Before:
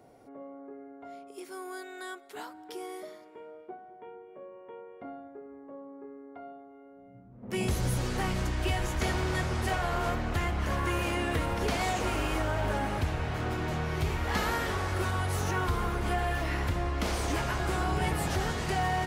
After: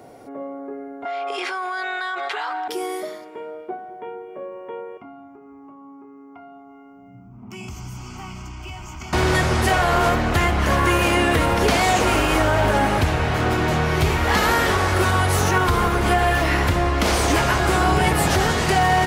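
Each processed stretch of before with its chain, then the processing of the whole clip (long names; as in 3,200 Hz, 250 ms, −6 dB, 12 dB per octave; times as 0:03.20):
0:01.05–0:02.68: flat-topped band-pass 1,700 Hz, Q 0.61 + comb filter 2.5 ms, depth 32% + envelope flattener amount 100%
0:04.97–0:09.13: downward compressor 2.5 to 1, threshold −48 dBFS + phaser with its sweep stopped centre 2,600 Hz, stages 8
whole clip: high-pass filter 40 Hz; low-shelf EQ 190 Hz −4 dB; boost into a limiter +20.5 dB; level −7 dB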